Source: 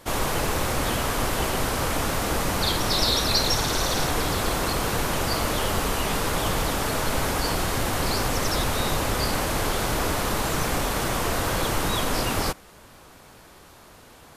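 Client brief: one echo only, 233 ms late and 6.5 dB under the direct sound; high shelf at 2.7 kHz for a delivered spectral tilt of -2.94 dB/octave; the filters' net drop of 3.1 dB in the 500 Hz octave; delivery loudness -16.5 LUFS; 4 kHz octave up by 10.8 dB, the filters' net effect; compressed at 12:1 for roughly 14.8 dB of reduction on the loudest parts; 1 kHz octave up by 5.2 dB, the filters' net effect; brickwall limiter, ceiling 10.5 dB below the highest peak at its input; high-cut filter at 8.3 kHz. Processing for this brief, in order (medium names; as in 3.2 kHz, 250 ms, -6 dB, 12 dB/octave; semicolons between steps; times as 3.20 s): low-pass 8.3 kHz; peaking EQ 500 Hz -6.5 dB; peaking EQ 1 kHz +6.5 dB; treble shelf 2.7 kHz +9 dB; peaking EQ 4 kHz +5.5 dB; compression 12:1, threshold -23 dBFS; peak limiter -24 dBFS; delay 233 ms -6.5 dB; trim +14 dB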